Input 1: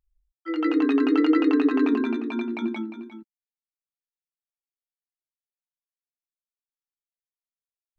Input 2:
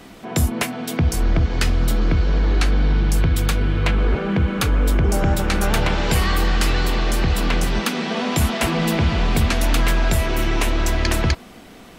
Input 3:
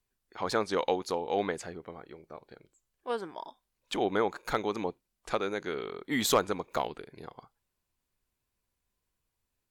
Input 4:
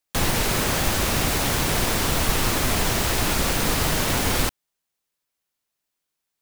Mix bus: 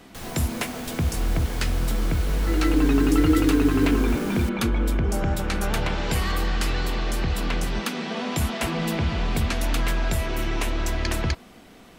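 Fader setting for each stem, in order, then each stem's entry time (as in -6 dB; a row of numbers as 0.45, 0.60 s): -0.5, -6.0, -19.0, -15.5 dB; 2.00, 0.00, 0.00, 0.00 s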